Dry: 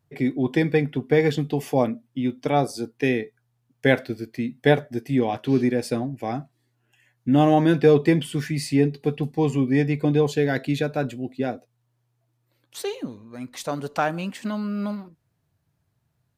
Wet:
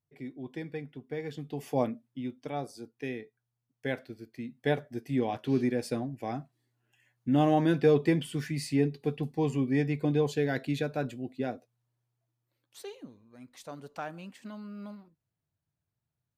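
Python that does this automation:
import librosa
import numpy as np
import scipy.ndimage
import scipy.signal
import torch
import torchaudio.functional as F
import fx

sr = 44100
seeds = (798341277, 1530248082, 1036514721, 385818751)

y = fx.gain(x, sr, db=fx.line((1.26, -18.0), (1.81, -7.0), (2.51, -14.5), (4.08, -14.5), (5.25, -7.0), (11.52, -7.0), (13.09, -15.0)))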